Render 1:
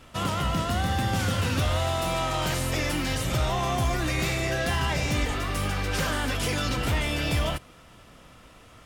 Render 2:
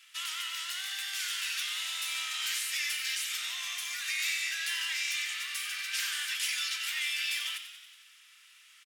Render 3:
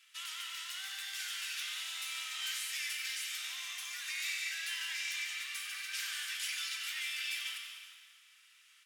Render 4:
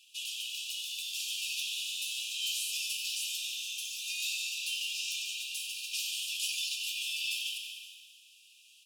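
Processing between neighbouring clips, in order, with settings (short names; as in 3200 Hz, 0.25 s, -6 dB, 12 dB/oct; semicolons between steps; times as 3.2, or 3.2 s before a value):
inverse Chebyshev high-pass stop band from 320 Hz, stop band 80 dB; on a send: frequency-shifting echo 92 ms, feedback 63%, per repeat +46 Hz, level -10.5 dB
resonator 770 Hz, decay 0.23 s, mix 60%; plate-style reverb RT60 1.7 s, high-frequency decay 0.8×, pre-delay 0.12 s, DRR 6 dB; gain +1 dB
brick-wall FIR high-pass 2400 Hz; gain +5 dB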